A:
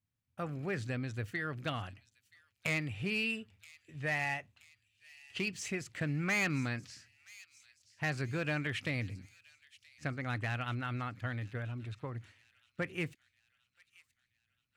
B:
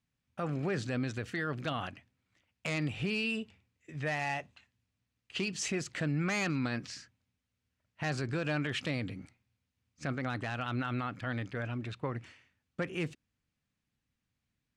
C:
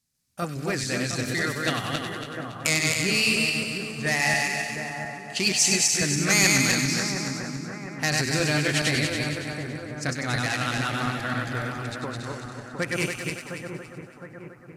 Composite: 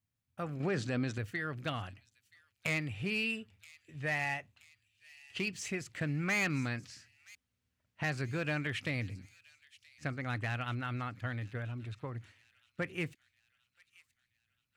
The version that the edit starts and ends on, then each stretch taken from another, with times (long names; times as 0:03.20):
A
0:00.60–0:01.18: punch in from B
0:07.35–0:08.04: punch in from B
not used: C